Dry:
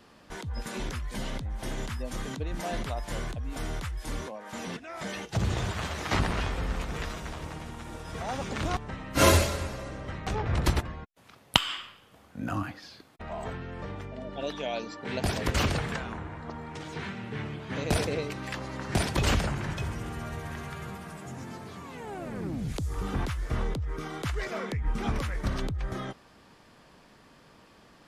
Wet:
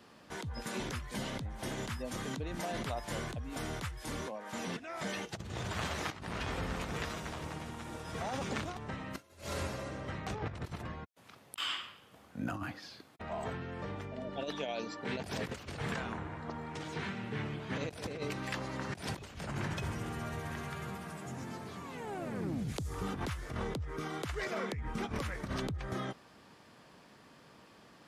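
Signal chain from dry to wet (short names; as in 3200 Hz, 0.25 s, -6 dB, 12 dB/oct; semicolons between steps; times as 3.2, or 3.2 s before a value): HPF 84 Hz 12 dB/oct; negative-ratio compressor -33 dBFS, ratio -0.5; gain -4 dB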